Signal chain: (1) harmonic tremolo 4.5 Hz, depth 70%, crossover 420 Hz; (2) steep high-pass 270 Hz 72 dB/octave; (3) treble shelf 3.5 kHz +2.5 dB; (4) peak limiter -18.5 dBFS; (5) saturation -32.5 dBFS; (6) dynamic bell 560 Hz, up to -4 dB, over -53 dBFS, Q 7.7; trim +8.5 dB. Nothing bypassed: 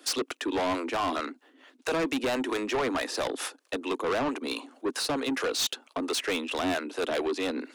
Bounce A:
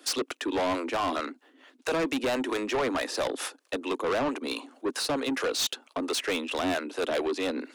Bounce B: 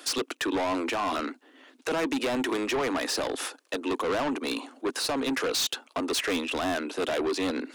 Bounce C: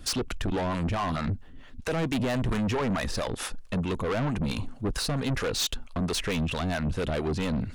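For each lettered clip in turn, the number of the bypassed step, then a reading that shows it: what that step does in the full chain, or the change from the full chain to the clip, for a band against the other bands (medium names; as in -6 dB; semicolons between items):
6, crest factor change -2.5 dB; 1, loudness change +1.0 LU; 2, 125 Hz band +20.0 dB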